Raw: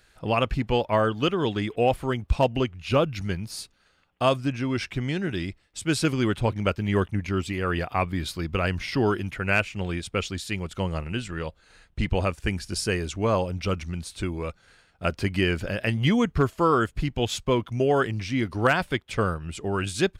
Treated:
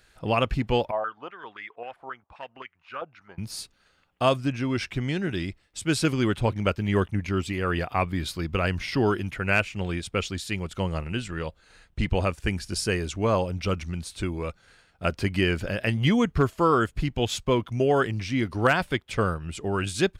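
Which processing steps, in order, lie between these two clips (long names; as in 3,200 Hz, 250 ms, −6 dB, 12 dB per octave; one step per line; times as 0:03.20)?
0:00.91–0:03.38: band-pass on a step sequencer 7.6 Hz 750–2,000 Hz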